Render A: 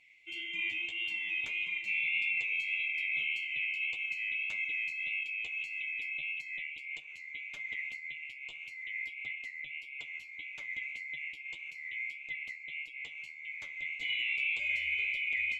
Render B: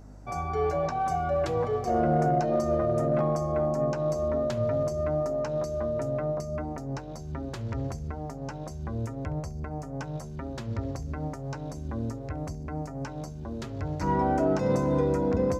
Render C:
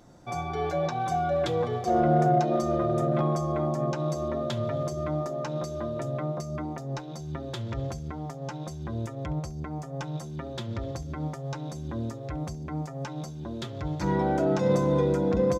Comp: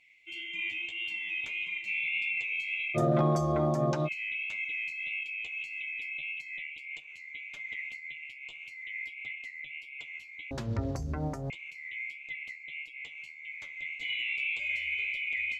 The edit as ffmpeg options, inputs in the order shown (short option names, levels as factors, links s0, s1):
-filter_complex "[0:a]asplit=3[s0][s1][s2];[s0]atrim=end=2.98[s3];[2:a]atrim=start=2.94:end=4.09[s4];[s1]atrim=start=4.05:end=10.512[s5];[1:a]atrim=start=10.508:end=11.502[s6];[s2]atrim=start=11.498[s7];[s3][s4]acrossfade=d=0.04:c1=tri:c2=tri[s8];[s8][s5]acrossfade=d=0.04:c1=tri:c2=tri[s9];[s9][s6]acrossfade=d=0.004:c1=hsin:c2=hsin[s10];[s10][s7]acrossfade=d=0.004:c1=hsin:c2=hsin"